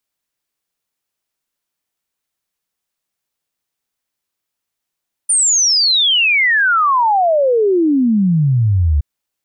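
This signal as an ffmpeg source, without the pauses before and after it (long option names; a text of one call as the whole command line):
ffmpeg -f lavfi -i "aevalsrc='0.316*clip(min(t,3.72-t)/0.01,0,1)*sin(2*PI*9300*3.72/log(69/9300)*(exp(log(69/9300)*t/3.72)-1))':duration=3.72:sample_rate=44100" out.wav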